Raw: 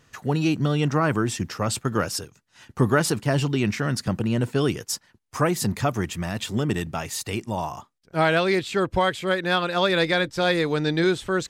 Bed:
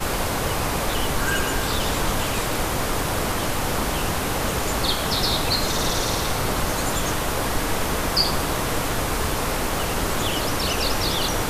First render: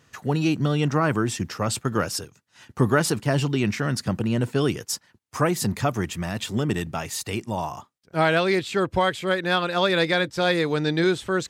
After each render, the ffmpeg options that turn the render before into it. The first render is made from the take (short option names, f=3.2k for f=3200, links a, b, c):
-af "highpass=57"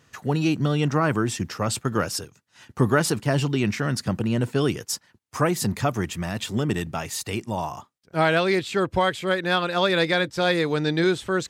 -af anull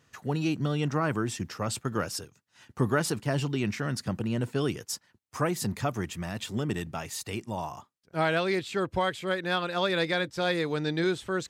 -af "volume=-6dB"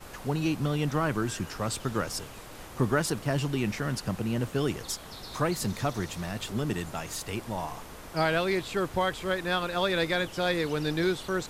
-filter_complex "[1:a]volume=-21dB[a];[0:a][a]amix=inputs=2:normalize=0"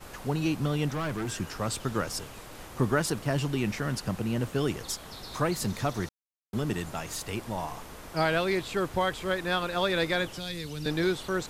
-filter_complex "[0:a]asettb=1/sr,asplit=3[a][b][c];[a]atrim=end=0.884[d];[b]atrim=start=0.88:end=1.32,asetpts=PTS-STARTPTS,afade=t=in:d=0.004:c=qsin,afade=t=out:st=0.436:d=0.004:c=qsin,asoftclip=type=hard:threshold=-28.5dB[e];[c]atrim=start=1.316[f];[d][e]acrossfade=d=0.004:c1=hsin:c2=qsin[g];[g][f]acrossfade=d=0.004:c1=qsin:c2=hsin,asettb=1/sr,asplit=3[h][i][j];[h]atrim=end=10.334[k];[i]atrim=start=10.33:end=10.86,asetpts=PTS-STARTPTS,afade=t=in:d=0.004:c=qsin,afade=t=out:st=0.526:d=0.004:c=qsin,acrossover=split=190|3000[l][m][n];[m]acompressor=threshold=-43dB:ratio=4:attack=3.2:release=140:knee=2.83:detection=peak[o];[l][o][n]amix=inputs=3:normalize=0[p];[j]atrim=start=10.856[q];[k][p]acrossfade=d=0.004:c1=hsin:c2=qsin[r];[r][q]acrossfade=d=0.004:c1=qsin:c2=hsin,asplit=3[s][t][u];[s]atrim=end=6.09,asetpts=PTS-STARTPTS,afade=t=out:st=6.086:d=0.004:c=hsin[v];[t]atrim=start=6.09:end=6.53,asetpts=PTS-STARTPTS,volume=0[w];[u]atrim=start=6.53,asetpts=PTS-STARTPTS,afade=t=in:d=0.004:c=hsin[x];[v][w][x]concat=n=3:v=0:a=1"